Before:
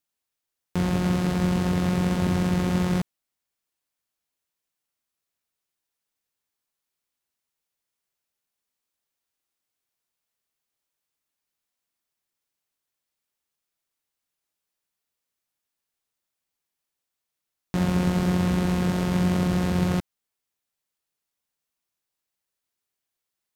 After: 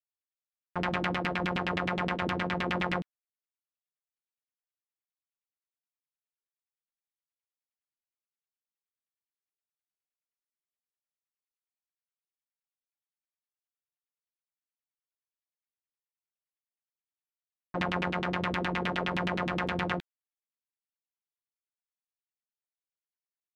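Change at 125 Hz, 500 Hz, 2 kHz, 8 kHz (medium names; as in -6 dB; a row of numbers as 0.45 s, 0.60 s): -13.0 dB, -4.0 dB, +3.5 dB, under -15 dB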